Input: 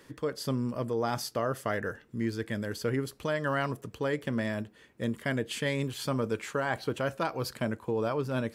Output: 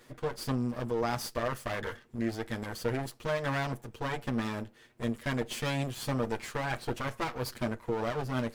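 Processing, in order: comb filter that takes the minimum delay 8.4 ms

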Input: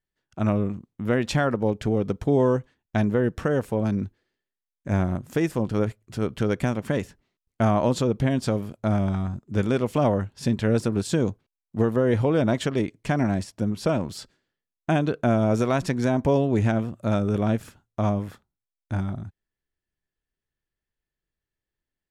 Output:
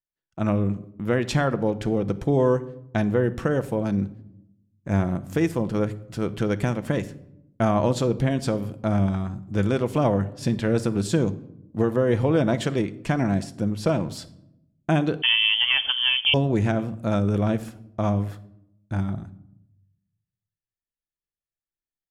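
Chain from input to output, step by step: gate -47 dBFS, range -14 dB; reverberation RT60 0.80 s, pre-delay 6 ms, DRR 11.5 dB; 15.22–16.34 s: frequency inversion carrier 3.3 kHz

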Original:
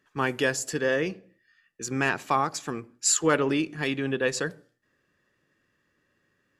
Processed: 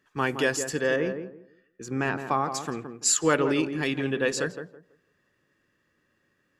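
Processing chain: 0.96–2.52 s: treble shelf 2.2 kHz -10.5 dB; tape echo 166 ms, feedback 27%, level -6 dB, low-pass 1 kHz

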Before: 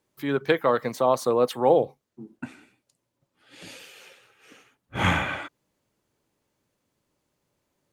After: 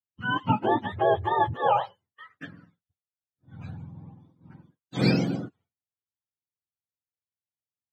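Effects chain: spectrum inverted on a logarithmic axis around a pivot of 650 Hz; expander -51 dBFS

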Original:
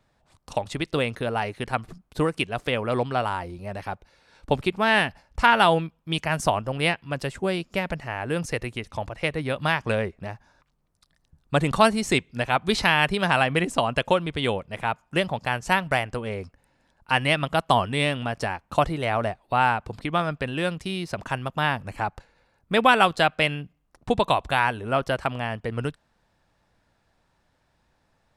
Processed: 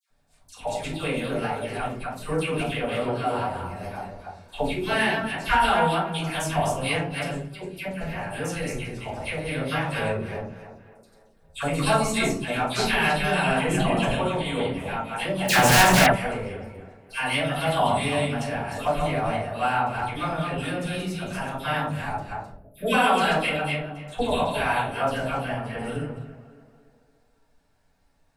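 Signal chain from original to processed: chunks repeated in reverse 156 ms, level -3 dB; 13.56–14.10 s: bass shelf 230 Hz +9 dB; tape echo 280 ms, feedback 51%, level -14 dB, low-pass 2.5 kHz; 7.27–7.91 s: level held to a coarse grid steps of 22 dB; 22.46–22.85 s: time-frequency box 710–10000 Hz -24 dB; simulated room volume 250 m³, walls furnished, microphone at 5.3 m; 15.48–16.06 s: waveshaping leveller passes 5; treble shelf 6.3 kHz +12 dB; phase dispersion lows, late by 99 ms, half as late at 1.5 kHz; trim -14 dB

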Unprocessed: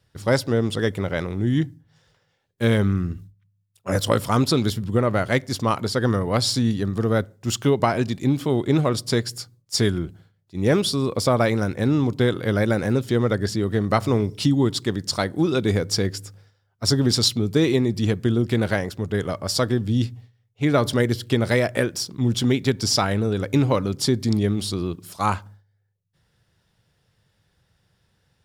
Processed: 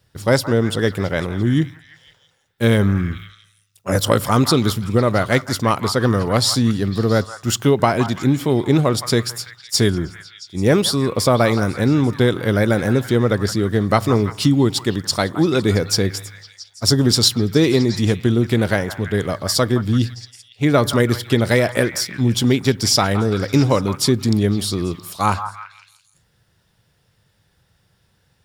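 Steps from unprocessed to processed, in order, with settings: treble shelf 12 kHz +8.5 dB; on a send: repeats whose band climbs or falls 168 ms, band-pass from 1.1 kHz, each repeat 0.7 oct, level -8 dB; on the sum: trim +4 dB

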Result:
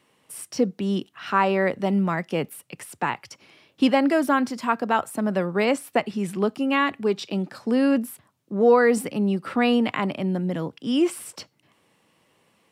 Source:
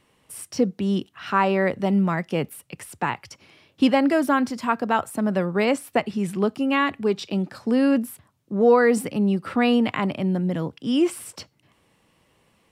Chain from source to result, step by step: Bessel high-pass 160 Hz

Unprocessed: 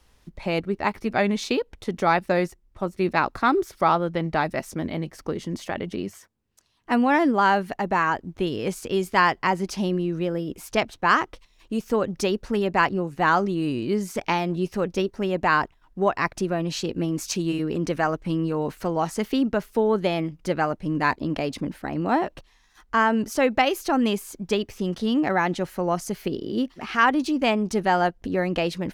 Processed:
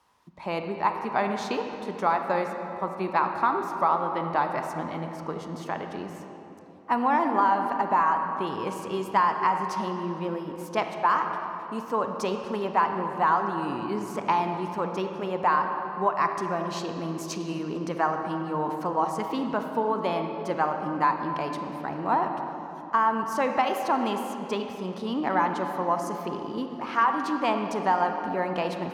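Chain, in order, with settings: high-pass 120 Hz 12 dB/octave; peaking EQ 1 kHz +14.5 dB 0.83 oct; compression, threshold -11 dBFS, peak gain reduction 8 dB; reverberation RT60 3.4 s, pre-delay 32 ms, DRR 4.5 dB; trim -8 dB

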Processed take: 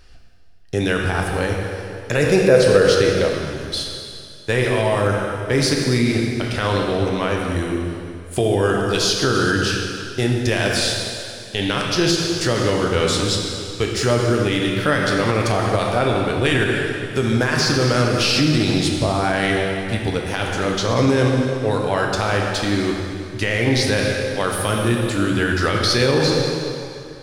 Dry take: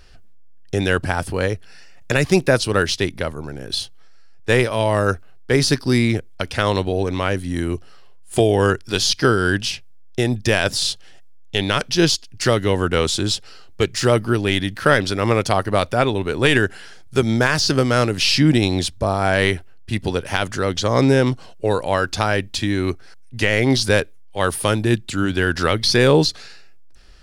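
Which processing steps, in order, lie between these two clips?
plate-style reverb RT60 2.5 s, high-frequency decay 0.9×, DRR 0 dB; peak limiter -5.5 dBFS, peak gain reduction 6 dB; 2.16–3.35 s: peaking EQ 480 Hz +13.5 dB 0.32 oct; trim -2 dB

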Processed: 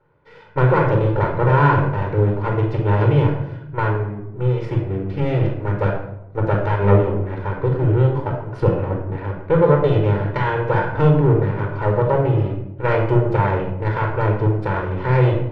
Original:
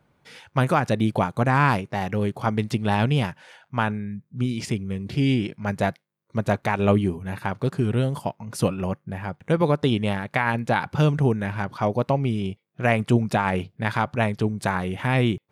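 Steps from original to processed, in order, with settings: comb filter that takes the minimum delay 2 ms; low-pass 1.7 kHz 12 dB/octave; bass shelf 130 Hz -8 dB; simulated room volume 2200 m³, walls furnished, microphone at 4.4 m; trim +1.5 dB

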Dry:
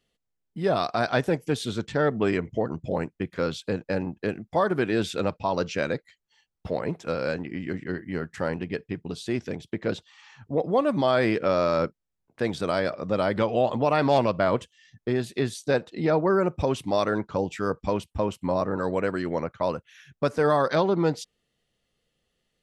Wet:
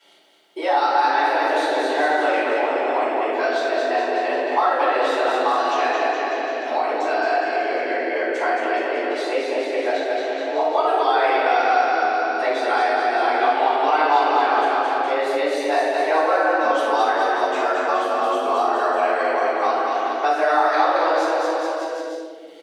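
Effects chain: high-pass 690 Hz 6 dB/octave; treble shelf 5.5 kHz -8.5 dB; band-stop 4.9 kHz, Q 22; bouncing-ball echo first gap 220 ms, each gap 0.9×, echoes 5; simulated room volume 380 m³, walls mixed, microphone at 6.6 m; frequency shift +160 Hz; three bands compressed up and down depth 70%; trim -7 dB

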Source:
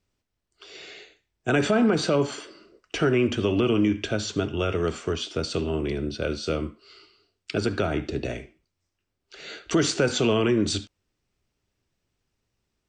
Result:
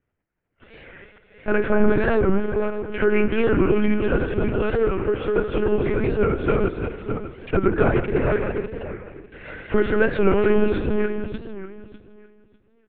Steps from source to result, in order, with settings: backward echo that repeats 299 ms, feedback 44%, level -3 dB; in parallel at +1 dB: gain riding 2 s; on the sum: cabinet simulation 100–2000 Hz, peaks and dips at 110 Hz -6 dB, 310 Hz -7 dB, 590 Hz -6 dB, 1.1 kHz -8 dB; on a send: feedback delay 160 ms, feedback 46%, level -14 dB; on the sum: monotone LPC vocoder at 8 kHz 210 Hz; warped record 45 rpm, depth 160 cents

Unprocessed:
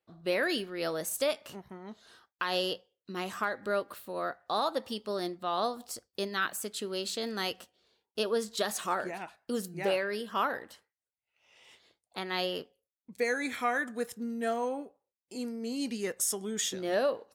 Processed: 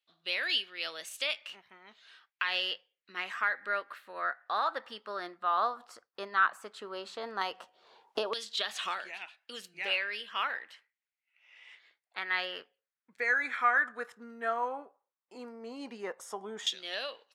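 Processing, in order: LFO band-pass saw down 0.12 Hz 870–3400 Hz; 7.41–8.98 s: three bands compressed up and down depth 100%; trim +8.5 dB

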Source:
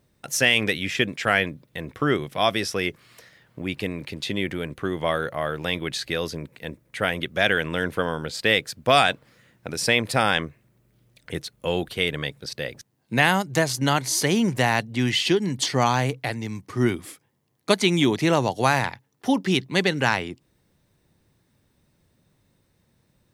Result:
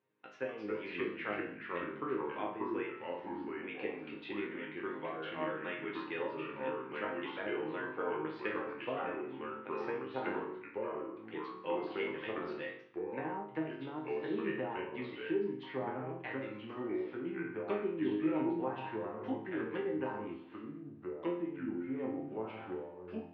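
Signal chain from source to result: low-pass that closes with the level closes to 560 Hz, closed at -17.5 dBFS; chord resonator G#2 major, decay 0.55 s; ever faster or slower copies 204 ms, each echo -3 st, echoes 2; cabinet simulation 300–2800 Hz, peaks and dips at 350 Hz +6 dB, 650 Hz -8 dB, 950 Hz +5 dB, 2.7 kHz +3 dB; trim +5 dB

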